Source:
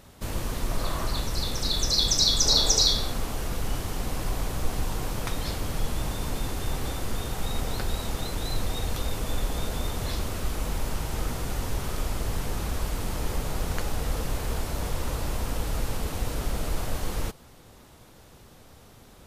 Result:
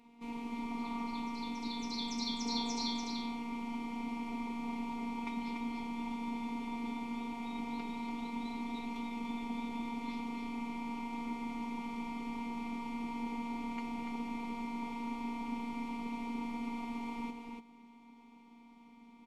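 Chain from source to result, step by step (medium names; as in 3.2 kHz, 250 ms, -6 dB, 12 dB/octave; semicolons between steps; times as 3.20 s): vowel filter u; robot voice 235 Hz; on a send: delay 289 ms -5 dB; on the sum: trim +8.5 dB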